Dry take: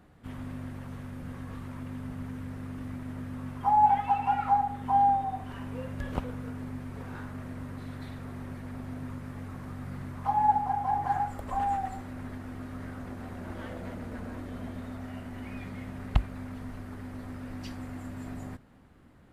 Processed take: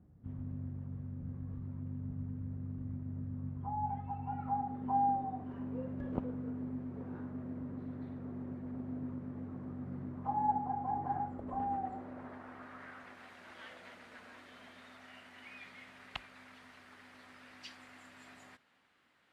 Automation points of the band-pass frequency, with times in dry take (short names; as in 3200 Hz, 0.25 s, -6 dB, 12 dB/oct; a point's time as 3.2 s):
band-pass, Q 0.9
4.2 s 110 Hz
4.75 s 280 Hz
11.69 s 280 Hz
12.44 s 1000 Hz
13.34 s 3100 Hz